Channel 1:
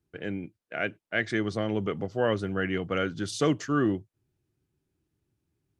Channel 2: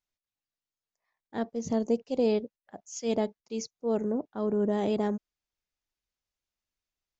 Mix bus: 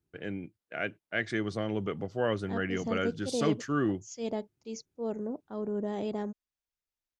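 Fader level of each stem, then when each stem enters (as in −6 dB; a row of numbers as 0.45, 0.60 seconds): −3.5, −6.0 decibels; 0.00, 1.15 seconds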